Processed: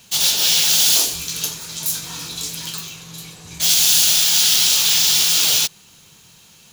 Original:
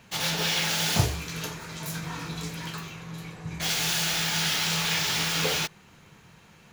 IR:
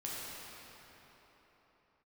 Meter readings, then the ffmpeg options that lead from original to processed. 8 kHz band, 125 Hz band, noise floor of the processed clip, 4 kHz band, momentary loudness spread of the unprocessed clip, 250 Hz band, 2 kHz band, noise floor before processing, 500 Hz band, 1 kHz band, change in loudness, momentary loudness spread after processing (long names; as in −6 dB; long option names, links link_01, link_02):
+15.0 dB, −7.0 dB, −49 dBFS, +11.5 dB, 13 LU, −4.0 dB, +1.5 dB, −55 dBFS, −2.5 dB, −1.0 dB, +12.5 dB, 15 LU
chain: -af "afftfilt=real='re*lt(hypot(re,im),0.2)':imag='im*lt(hypot(re,im),0.2)':win_size=1024:overlap=0.75,aexciter=amount=5.8:drive=3.8:freq=2900,volume=-1dB"